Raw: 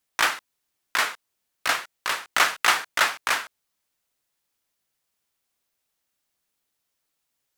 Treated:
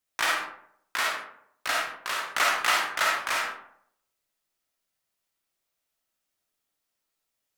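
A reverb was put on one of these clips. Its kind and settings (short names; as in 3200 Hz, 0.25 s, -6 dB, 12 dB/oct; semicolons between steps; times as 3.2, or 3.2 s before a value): digital reverb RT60 0.69 s, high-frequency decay 0.5×, pre-delay 10 ms, DRR -2 dB; gain -6.5 dB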